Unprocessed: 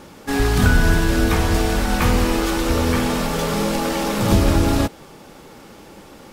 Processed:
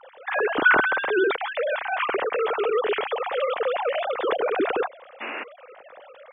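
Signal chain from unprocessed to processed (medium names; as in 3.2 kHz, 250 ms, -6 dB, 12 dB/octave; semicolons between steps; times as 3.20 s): formants replaced by sine waves; painted sound noise, 5.20–5.44 s, 220–2900 Hz -26 dBFS; trim -6.5 dB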